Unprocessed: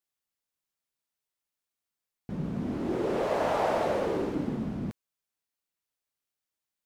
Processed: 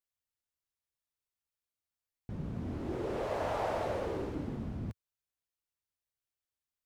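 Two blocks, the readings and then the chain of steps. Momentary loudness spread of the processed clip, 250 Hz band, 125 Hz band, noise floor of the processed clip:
10 LU, -8.0 dB, -2.5 dB, under -85 dBFS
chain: resonant low shelf 130 Hz +8 dB, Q 1.5; trim -6.5 dB

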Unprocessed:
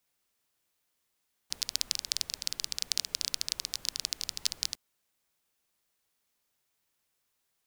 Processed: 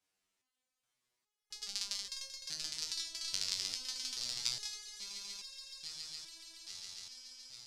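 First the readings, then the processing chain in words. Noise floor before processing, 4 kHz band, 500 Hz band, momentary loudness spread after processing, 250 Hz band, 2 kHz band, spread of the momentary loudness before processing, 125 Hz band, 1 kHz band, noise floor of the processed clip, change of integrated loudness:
-79 dBFS, -4.0 dB, -4.0 dB, 12 LU, -4.0 dB, -4.5 dB, 5 LU, -4.5 dB, -4.0 dB, under -85 dBFS, -7.0 dB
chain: low-pass 8.8 kHz 12 dB/octave; echo with a slow build-up 140 ms, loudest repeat 8, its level -15 dB; resonator arpeggio 2.4 Hz 95–540 Hz; trim +6.5 dB

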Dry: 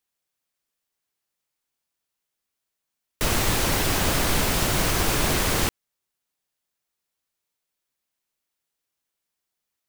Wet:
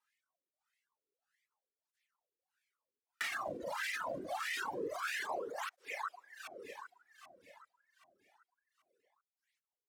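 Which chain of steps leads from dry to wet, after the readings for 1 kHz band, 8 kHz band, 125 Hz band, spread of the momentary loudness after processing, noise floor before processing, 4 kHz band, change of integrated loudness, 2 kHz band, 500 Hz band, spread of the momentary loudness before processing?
-11.5 dB, -24.5 dB, -34.5 dB, 14 LU, -83 dBFS, -19.5 dB, -17.5 dB, -11.0 dB, -12.5 dB, 3 LU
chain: wah-wah 1.6 Hz 420–2000 Hz, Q 4.2; on a send: echo whose repeats swap between lows and highs 391 ms, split 1.7 kHz, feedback 56%, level -11.5 dB; on the sum: reverb removal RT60 1.6 s; tilt shelf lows -3.5 dB, about 890 Hz; peak limiter -36 dBFS, peak gain reduction 13 dB; compression 6:1, threshold -46 dBFS, peak gain reduction 6 dB; treble shelf 4.8 kHz +11 dB; reverb removal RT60 1 s; cancelling through-zero flanger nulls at 0.26 Hz, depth 2.8 ms; trim +12.5 dB

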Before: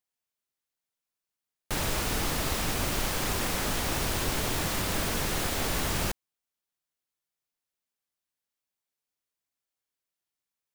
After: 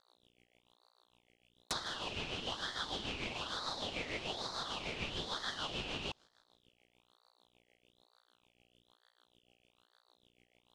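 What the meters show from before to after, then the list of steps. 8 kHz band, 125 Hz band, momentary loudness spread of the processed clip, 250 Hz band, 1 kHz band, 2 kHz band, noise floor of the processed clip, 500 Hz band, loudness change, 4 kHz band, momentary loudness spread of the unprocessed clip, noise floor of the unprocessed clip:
-18.5 dB, -16.0 dB, 2 LU, -13.0 dB, -9.5 dB, -9.5 dB, -77 dBFS, -10.5 dB, -10.5 dB, -5.0 dB, 2 LU, under -85 dBFS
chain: low-pass that closes with the level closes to 1.4 kHz, closed at -28 dBFS; mains buzz 60 Hz, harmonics 34, -63 dBFS -4 dB/octave; treble shelf 12 kHz -6 dB; feedback echo behind a high-pass 159 ms, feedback 47%, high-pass 2.4 kHz, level -24 dB; rotary cabinet horn 6.7 Hz; LFO high-pass sine 1.4 Hz 750–1500 Hz; frequency weighting ITU-R 468; ring modulator with a swept carrier 1.9 kHz, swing 35%, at 1.1 Hz; trim -1.5 dB

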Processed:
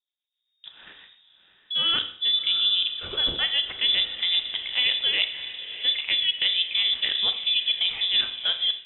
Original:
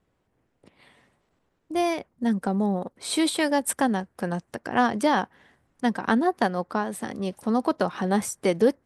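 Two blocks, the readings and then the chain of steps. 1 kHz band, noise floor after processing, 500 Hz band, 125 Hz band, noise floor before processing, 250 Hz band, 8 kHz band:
-17.5 dB, -81 dBFS, -19.5 dB, under -15 dB, -73 dBFS, -26.0 dB, under -40 dB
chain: bass shelf 62 Hz +7 dB; rotary cabinet horn 7.5 Hz, later 0.9 Hz, at 4.98 s; gate with hold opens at -54 dBFS; peaking EQ 1.2 kHz +3.5 dB 0.33 oct; reverse; compression 10:1, threshold -33 dBFS, peak gain reduction 17.5 dB; reverse; level-controlled noise filter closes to 2.8 kHz; on a send: echo that smears into a reverb 680 ms, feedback 42%, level -12.5 dB; on the sum: Schroeder reverb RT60 0.58 s, combs from 26 ms, DRR 8.5 dB; level rider gain up to 13.5 dB; frequency inversion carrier 3.7 kHz; trim -1.5 dB

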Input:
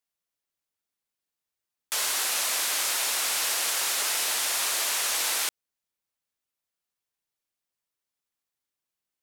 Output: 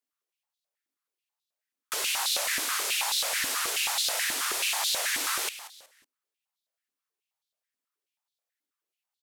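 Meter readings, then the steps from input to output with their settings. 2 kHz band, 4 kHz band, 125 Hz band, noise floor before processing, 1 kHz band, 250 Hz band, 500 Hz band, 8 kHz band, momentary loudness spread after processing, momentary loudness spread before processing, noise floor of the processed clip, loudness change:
+0.5 dB, -0.5 dB, no reading, under -85 dBFS, 0.0 dB, +1.5 dB, 0.0 dB, -3.5 dB, 5 LU, 2 LU, under -85 dBFS, -2.0 dB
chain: frequency-shifting echo 185 ms, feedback 32%, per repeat -150 Hz, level -14 dB; step-sequenced high-pass 9.3 Hz 270–3800 Hz; trim -4 dB

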